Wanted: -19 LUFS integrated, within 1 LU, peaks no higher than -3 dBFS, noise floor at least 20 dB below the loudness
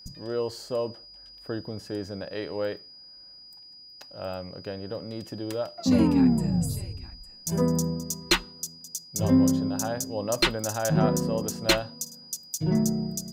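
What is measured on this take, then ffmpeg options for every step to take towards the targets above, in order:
steady tone 4900 Hz; tone level -46 dBFS; loudness -27.5 LUFS; peak -8.5 dBFS; loudness target -19.0 LUFS
-> -af "bandreject=f=4.9k:w=30"
-af "volume=8.5dB,alimiter=limit=-3dB:level=0:latency=1"

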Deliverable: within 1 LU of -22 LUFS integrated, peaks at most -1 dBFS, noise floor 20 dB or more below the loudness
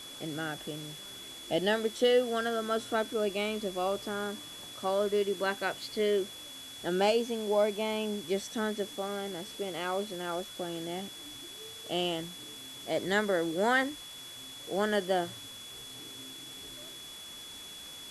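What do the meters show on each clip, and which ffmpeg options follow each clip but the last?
steady tone 3400 Hz; tone level -45 dBFS; noise floor -46 dBFS; noise floor target -53 dBFS; loudness -32.5 LUFS; peak -15.5 dBFS; loudness target -22.0 LUFS
-> -af "bandreject=f=3.4k:w=30"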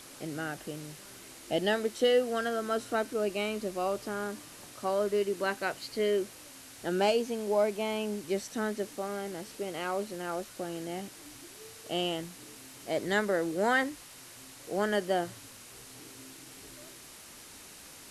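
steady tone none; noise floor -50 dBFS; noise floor target -52 dBFS
-> -af "afftdn=nr=6:nf=-50"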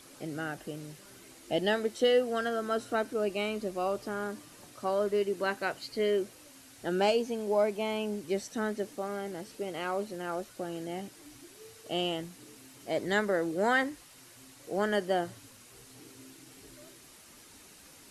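noise floor -55 dBFS; loudness -32.0 LUFS; peak -15.5 dBFS; loudness target -22.0 LUFS
-> -af "volume=10dB"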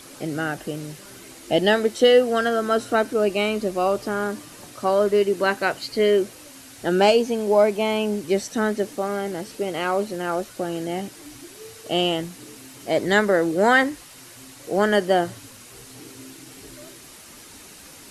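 loudness -22.0 LUFS; peak -5.5 dBFS; noise floor -45 dBFS

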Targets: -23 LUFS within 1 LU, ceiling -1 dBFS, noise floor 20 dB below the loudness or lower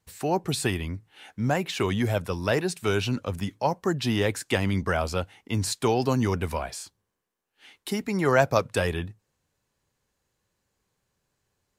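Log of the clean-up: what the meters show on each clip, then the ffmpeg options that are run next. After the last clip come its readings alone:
loudness -27.0 LUFS; peak -5.5 dBFS; loudness target -23.0 LUFS
-> -af "volume=4dB"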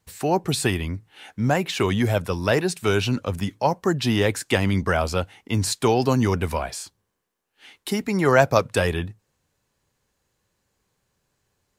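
loudness -23.0 LUFS; peak -1.5 dBFS; noise floor -75 dBFS

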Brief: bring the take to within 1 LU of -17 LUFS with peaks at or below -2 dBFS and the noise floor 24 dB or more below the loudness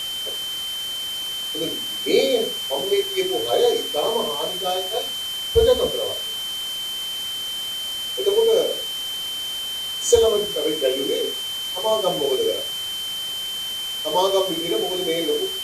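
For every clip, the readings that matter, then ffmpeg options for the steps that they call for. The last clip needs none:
steady tone 3100 Hz; tone level -26 dBFS; noise floor -29 dBFS; noise floor target -46 dBFS; loudness -22.0 LUFS; peak -3.5 dBFS; loudness target -17.0 LUFS
-> -af "bandreject=f=3.1k:w=30"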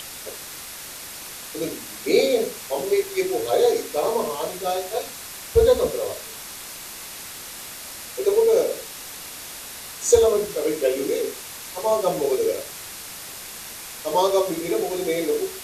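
steady tone none; noise floor -37 dBFS; noise floor target -49 dBFS
-> -af "afftdn=nr=12:nf=-37"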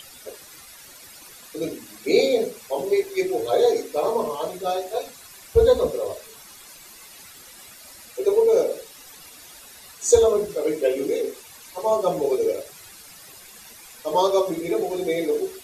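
noise floor -45 dBFS; noise floor target -47 dBFS
-> -af "afftdn=nr=6:nf=-45"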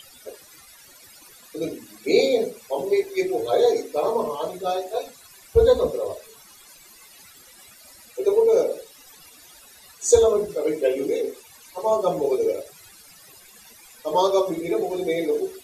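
noise floor -49 dBFS; loudness -22.5 LUFS; peak -3.5 dBFS; loudness target -17.0 LUFS
-> -af "volume=5.5dB,alimiter=limit=-2dB:level=0:latency=1"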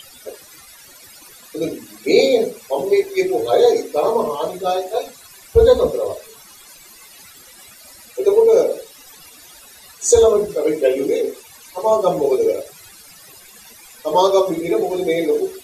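loudness -17.5 LUFS; peak -2.0 dBFS; noise floor -44 dBFS

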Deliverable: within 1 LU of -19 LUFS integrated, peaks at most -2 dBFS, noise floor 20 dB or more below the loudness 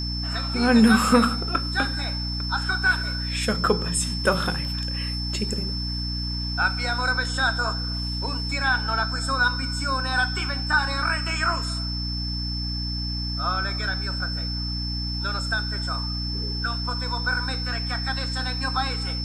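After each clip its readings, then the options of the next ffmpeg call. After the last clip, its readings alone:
hum 60 Hz; harmonics up to 300 Hz; hum level -27 dBFS; steady tone 5300 Hz; tone level -30 dBFS; loudness -24.5 LUFS; peak -4.0 dBFS; loudness target -19.0 LUFS
-> -af "bandreject=f=60:t=h:w=4,bandreject=f=120:t=h:w=4,bandreject=f=180:t=h:w=4,bandreject=f=240:t=h:w=4,bandreject=f=300:t=h:w=4"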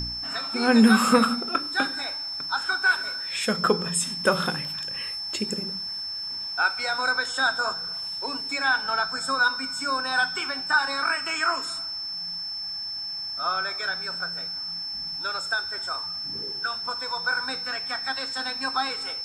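hum none; steady tone 5300 Hz; tone level -30 dBFS
-> -af "bandreject=f=5.3k:w=30"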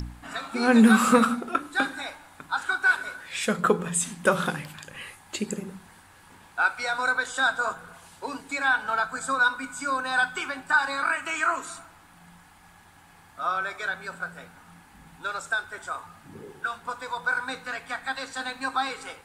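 steady tone none; loudness -26.0 LUFS; peak -5.5 dBFS; loudness target -19.0 LUFS
-> -af "volume=7dB,alimiter=limit=-2dB:level=0:latency=1"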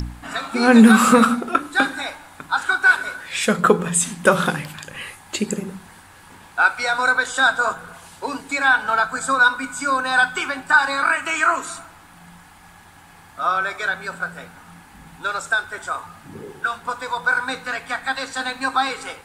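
loudness -19.5 LUFS; peak -2.0 dBFS; noise floor -47 dBFS

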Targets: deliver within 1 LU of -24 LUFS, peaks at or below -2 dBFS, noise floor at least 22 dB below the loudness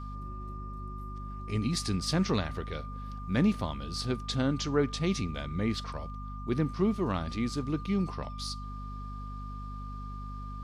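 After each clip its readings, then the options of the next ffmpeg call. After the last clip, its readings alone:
hum 50 Hz; harmonics up to 250 Hz; hum level -37 dBFS; steady tone 1200 Hz; tone level -44 dBFS; loudness -33.0 LUFS; peak -15.0 dBFS; loudness target -24.0 LUFS
-> -af "bandreject=f=50:t=h:w=6,bandreject=f=100:t=h:w=6,bandreject=f=150:t=h:w=6,bandreject=f=200:t=h:w=6,bandreject=f=250:t=h:w=6"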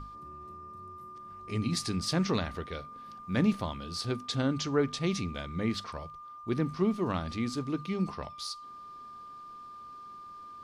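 hum none; steady tone 1200 Hz; tone level -44 dBFS
-> -af "bandreject=f=1.2k:w=30"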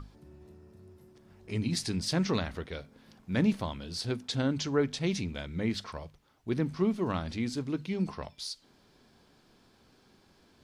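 steady tone none; loudness -32.5 LUFS; peak -15.5 dBFS; loudness target -24.0 LUFS
-> -af "volume=8.5dB"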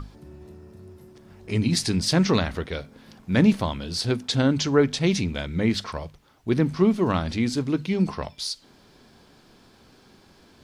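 loudness -24.0 LUFS; peak -7.0 dBFS; noise floor -56 dBFS

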